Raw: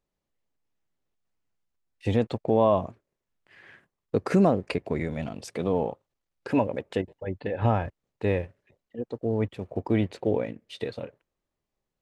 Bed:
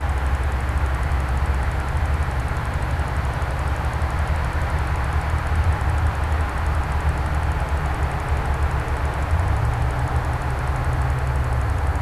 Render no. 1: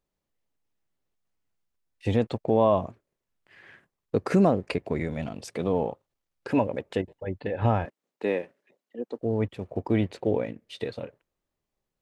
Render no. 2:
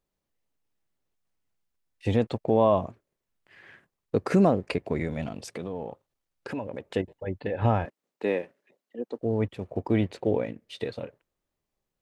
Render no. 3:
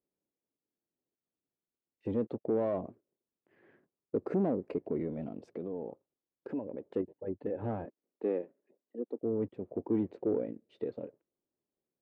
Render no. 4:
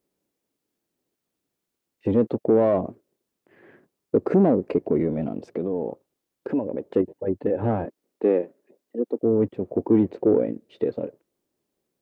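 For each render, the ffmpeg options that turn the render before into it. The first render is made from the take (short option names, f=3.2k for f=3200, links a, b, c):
-filter_complex "[0:a]asettb=1/sr,asplit=3[a][b][c];[a]atrim=end=7.854[d];[b]atrim=start=7.85:end=9.19,asetpts=PTS-STARTPTS,afade=t=in:d=0.004:c=qsin,afade=t=out:st=1.336:d=0.004:c=qsin,highpass=f=210:w=0.5412,highpass=f=210:w=1.3066[e];[c]atrim=start=9.186[f];[d][e]acrossfade=d=0.004:c1=hsin:c2=qsin[g];[g][f]acrossfade=d=0.004:c1=qsin:c2=hsin"
-filter_complex "[0:a]asettb=1/sr,asplit=3[a][b][c];[a]atrim=end=5.434[d];[b]atrim=start=5.43:end=6.87,asetpts=PTS-STARTPTS,afade=t=in:d=0.004:c=qsin,afade=t=out:st=1.436:d=0.004:c=qsin,acompressor=threshold=-32dB:ratio=3:attack=3.2:release=140:knee=1:detection=peak[e];[c]atrim=start=6.866[f];[d][e]acrossfade=d=0.004:c1=hsin:c2=qsin[g];[g][f]acrossfade=d=0.004:c1=qsin:c2=hsin"
-af "asoftclip=type=tanh:threshold=-20dB,bandpass=f=330:t=q:w=1.5:csg=0"
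-af "volume=12dB"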